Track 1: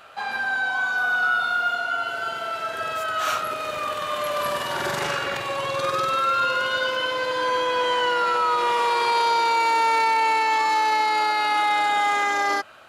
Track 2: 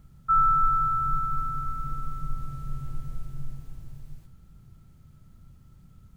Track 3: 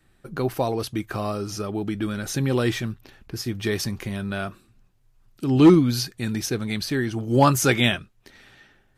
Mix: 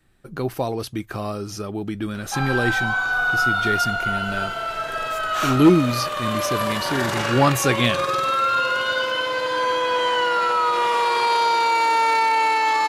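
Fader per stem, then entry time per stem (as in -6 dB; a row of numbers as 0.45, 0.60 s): +1.5, -13.0, -0.5 dB; 2.15, 2.05, 0.00 s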